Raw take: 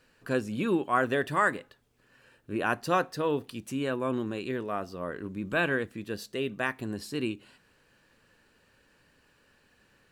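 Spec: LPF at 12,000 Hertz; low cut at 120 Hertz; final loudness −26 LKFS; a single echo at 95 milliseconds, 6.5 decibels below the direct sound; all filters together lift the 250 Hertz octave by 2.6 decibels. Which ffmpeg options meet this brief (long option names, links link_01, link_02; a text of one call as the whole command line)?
ffmpeg -i in.wav -af "highpass=120,lowpass=12000,equalizer=frequency=250:width_type=o:gain=3.5,aecho=1:1:95:0.473,volume=3dB" out.wav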